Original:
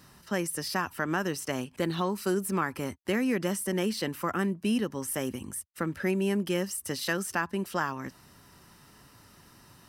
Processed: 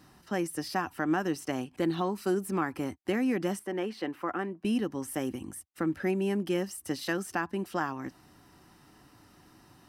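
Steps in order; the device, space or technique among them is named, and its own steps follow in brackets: inside a helmet (treble shelf 5.5 kHz -5 dB; small resonant body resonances 310/750 Hz, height 9 dB); 3.59–4.65 s: tone controls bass -11 dB, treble -13 dB; trim -3 dB

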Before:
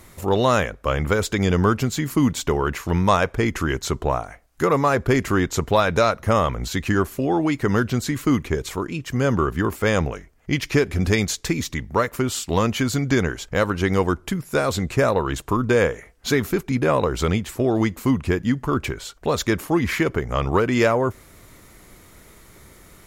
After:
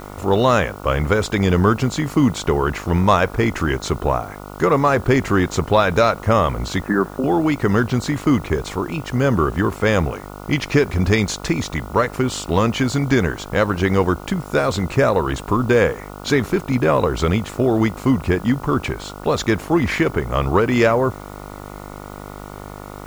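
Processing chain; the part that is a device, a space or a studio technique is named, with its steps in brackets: 6.81–7.24 s: Chebyshev band-pass 170–1800 Hz, order 4; distance through air 51 m; video cassette with head-switching buzz (mains buzz 50 Hz, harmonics 29, -38 dBFS -2 dB/octave; white noise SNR 31 dB); trim +3 dB

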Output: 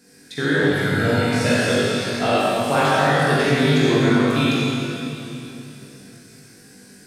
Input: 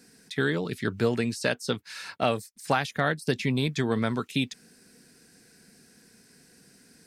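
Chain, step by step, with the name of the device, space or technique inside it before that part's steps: 0.63–1.27 s: comb 1.4 ms, depth 71%; tunnel (flutter echo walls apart 3.5 m, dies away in 0.26 s; reverberation RT60 3.2 s, pre-delay 38 ms, DRR -7.5 dB)

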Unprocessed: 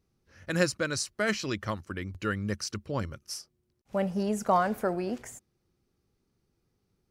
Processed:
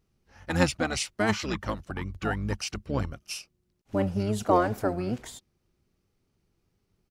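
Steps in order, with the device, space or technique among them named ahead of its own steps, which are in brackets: octave pedal (harmony voices -12 st -2 dB)

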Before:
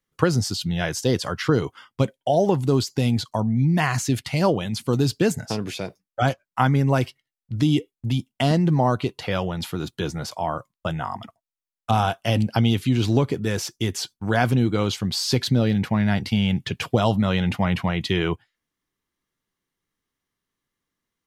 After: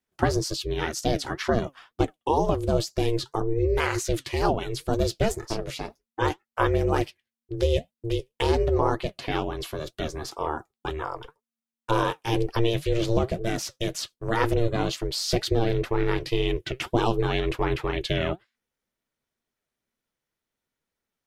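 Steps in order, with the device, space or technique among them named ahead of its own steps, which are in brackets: alien voice (ring modulator 230 Hz; flange 2 Hz, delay 2.5 ms, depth 5.6 ms, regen +68%); trim +4 dB

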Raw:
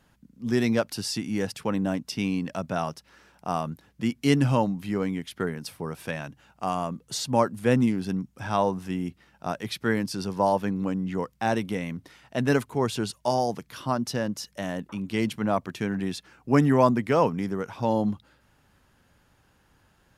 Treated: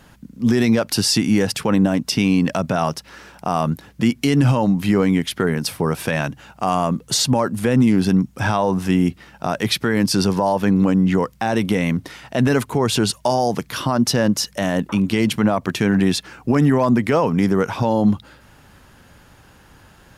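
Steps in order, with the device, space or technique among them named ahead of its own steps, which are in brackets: loud club master (compression 1.5:1, threshold -27 dBFS, peak gain reduction 5 dB; hard clipper -12.5 dBFS, distortion -43 dB; loudness maximiser +21 dB); trim -6.5 dB

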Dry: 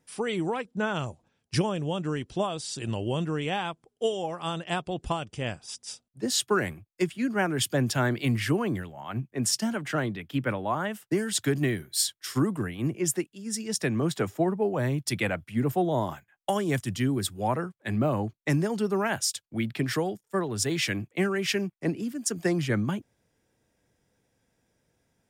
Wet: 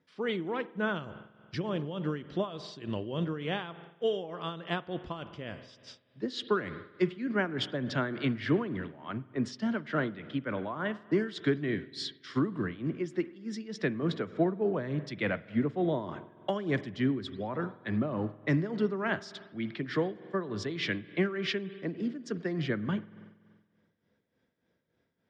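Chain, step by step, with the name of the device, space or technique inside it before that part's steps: combo amplifier with spring reverb and tremolo (spring tank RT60 1.6 s, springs 47 ms, chirp 80 ms, DRR 13.5 dB; tremolo 3.4 Hz, depth 63%; cabinet simulation 98–4000 Hz, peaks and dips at 120 Hz -6 dB, 800 Hz -8 dB, 2.6 kHz -6 dB)

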